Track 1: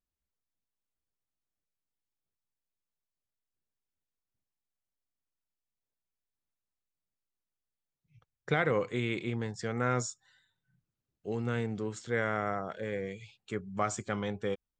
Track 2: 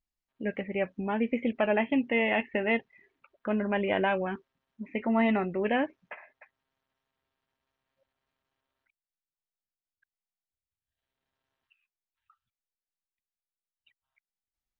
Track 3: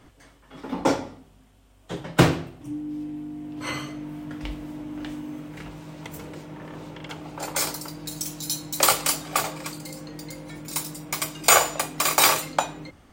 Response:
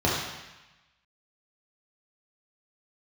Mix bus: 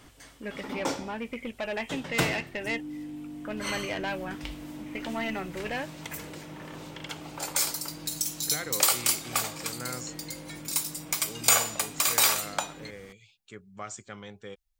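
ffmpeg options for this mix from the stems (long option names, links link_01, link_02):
-filter_complex "[0:a]volume=-10.5dB[link_01];[1:a]asubboost=boost=11.5:cutoff=72,asoftclip=type=tanh:threshold=-23dB,volume=-4.5dB[link_02];[2:a]acompressor=threshold=-41dB:ratio=1.5,volume=-2dB[link_03];[link_01][link_02][link_03]amix=inputs=3:normalize=0,highshelf=frequency=2000:gain=9.5"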